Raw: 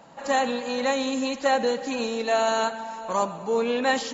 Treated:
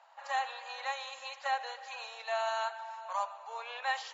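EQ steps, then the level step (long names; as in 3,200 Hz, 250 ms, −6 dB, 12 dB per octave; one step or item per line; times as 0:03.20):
Butterworth high-pass 700 Hz 36 dB per octave
high-frequency loss of the air 110 metres
−7.0 dB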